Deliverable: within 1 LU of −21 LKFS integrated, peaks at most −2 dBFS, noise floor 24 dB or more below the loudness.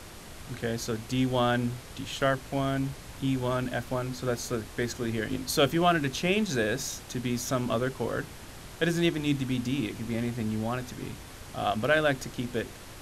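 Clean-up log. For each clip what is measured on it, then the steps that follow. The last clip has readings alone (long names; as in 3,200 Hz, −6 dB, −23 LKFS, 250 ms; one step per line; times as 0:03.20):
background noise floor −45 dBFS; target noise floor −54 dBFS; integrated loudness −29.5 LKFS; sample peak −9.5 dBFS; target loudness −21.0 LKFS
→ noise reduction from a noise print 9 dB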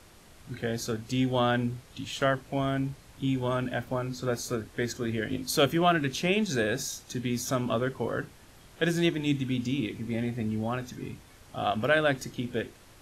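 background noise floor −54 dBFS; integrated loudness −29.5 LKFS; sample peak −9.5 dBFS; target loudness −21.0 LKFS
→ level +8.5 dB
brickwall limiter −2 dBFS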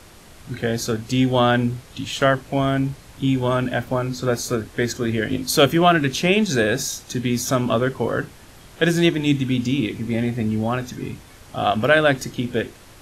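integrated loudness −21.0 LKFS; sample peak −2.0 dBFS; background noise floor −46 dBFS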